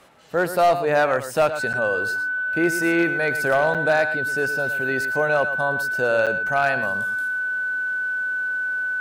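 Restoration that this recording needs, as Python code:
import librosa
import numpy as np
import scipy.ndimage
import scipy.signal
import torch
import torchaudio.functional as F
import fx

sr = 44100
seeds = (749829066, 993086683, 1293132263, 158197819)

y = fx.fix_declip(x, sr, threshold_db=-11.5)
y = fx.notch(y, sr, hz=1500.0, q=30.0)
y = fx.fix_interpolate(y, sr, at_s=(1.73, 3.74, 6.26), length_ms=7.3)
y = fx.fix_echo_inverse(y, sr, delay_ms=113, level_db=-11.5)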